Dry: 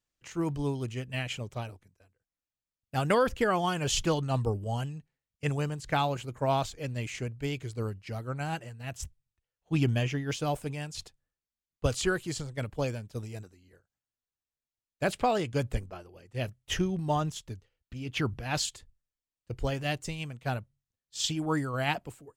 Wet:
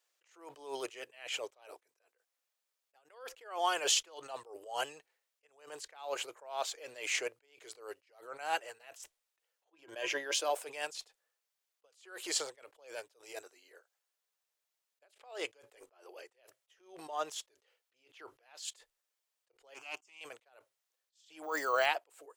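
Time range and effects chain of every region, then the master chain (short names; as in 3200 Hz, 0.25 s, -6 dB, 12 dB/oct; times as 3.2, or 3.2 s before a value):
9.72–10.5 small resonant body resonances 340/560/1000/1600 Hz, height 11 dB, ringing for 85 ms + three-band expander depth 70%
19.74–20.21 low shelf 150 Hz -9.5 dB + fixed phaser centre 2700 Hz, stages 8 + Doppler distortion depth 0.13 ms
21.43–21.86 synth low-pass 6000 Hz, resonance Q 4.7 + careless resampling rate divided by 2×, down none, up hold
whole clip: inverse Chebyshev high-pass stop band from 220 Hz, stop band 40 dB; compressor 12:1, threshold -33 dBFS; attack slew limiter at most 120 dB/s; gain +8 dB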